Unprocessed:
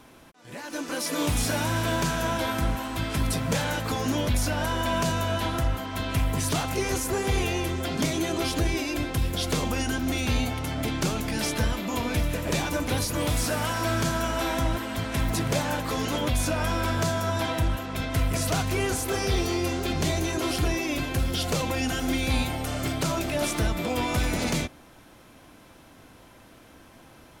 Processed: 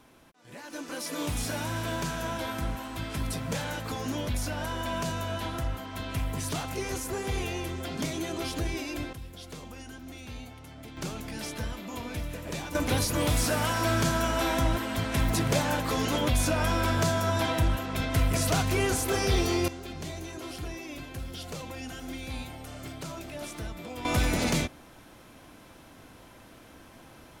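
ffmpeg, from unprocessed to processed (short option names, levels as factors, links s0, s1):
-af "asetnsamples=n=441:p=0,asendcmd='9.13 volume volume -16.5dB;10.97 volume volume -9dB;12.75 volume volume 0dB;19.68 volume volume -12dB;24.05 volume volume 0dB',volume=0.501"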